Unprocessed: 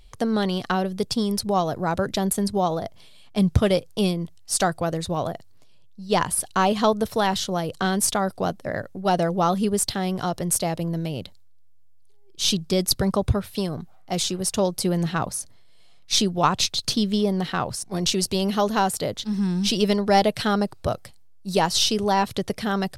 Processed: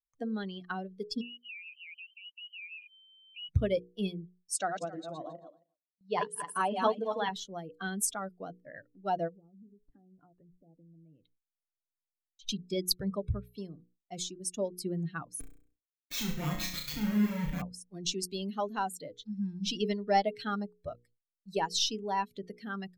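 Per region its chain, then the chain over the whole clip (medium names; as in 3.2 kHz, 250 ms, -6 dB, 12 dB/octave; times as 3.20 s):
1.21–3.49 s: resonances exaggerated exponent 3 + compression 5:1, threshold -36 dBFS + frequency inversion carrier 3.1 kHz
4.56–7.29 s: backward echo that repeats 135 ms, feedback 45%, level -2.5 dB + band-pass 160–8000 Hz
9.28–12.49 s: low-pass that closes with the level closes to 370 Hz, closed at -19 dBFS + compression, threshold -31 dBFS
15.40–17.62 s: bass shelf 210 Hz +6 dB + Schmitt trigger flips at -26 dBFS + flutter echo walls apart 5.7 m, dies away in 0.92 s
whole clip: expander on every frequency bin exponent 2; hum notches 60/120/180/240/300/360/420/480 Hz; gate with hold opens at -56 dBFS; trim -5.5 dB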